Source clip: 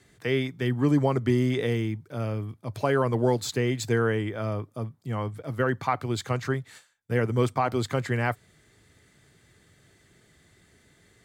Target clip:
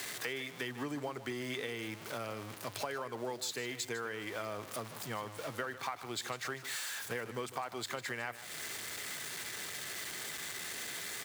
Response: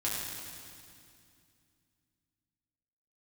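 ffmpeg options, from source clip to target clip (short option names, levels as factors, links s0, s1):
-filter_complex "[0:a]aeval=exprs='val(0)+0.5*0.0141*sgn(val(0))':c=same,highpass=f=1100:p=1,acompressor=threshold=0.0112:ratio=10,asplit=2[s0][s1];[s1]aecho=0:1:151:0.2[s2];[s0][s2]amix=inputs=2:normalize=0,volume=1.5"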